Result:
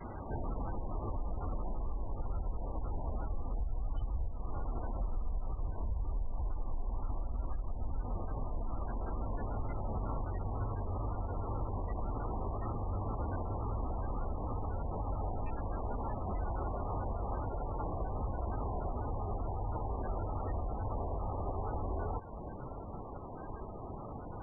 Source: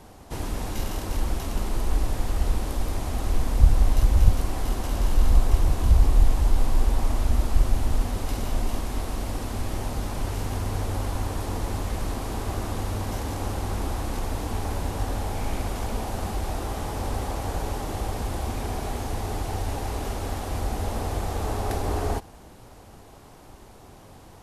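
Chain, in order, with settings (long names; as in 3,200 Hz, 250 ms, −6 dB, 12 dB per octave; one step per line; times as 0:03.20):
dynamic equaliser 290 Hz, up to −4 dB, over −44 dBFS, Q 1
downward compressor 10 to 1, threshold −32 dBFS, peak gain reduction 24 dB
brickwall limiter −32 dBFS, peak gain reduction 8.5 dB
tape wow and flutter 150 cents
echo ahead of the sound 157 ms −16 dB
level +4.5 dB
MP3 8 kbit/s 22,050 Hz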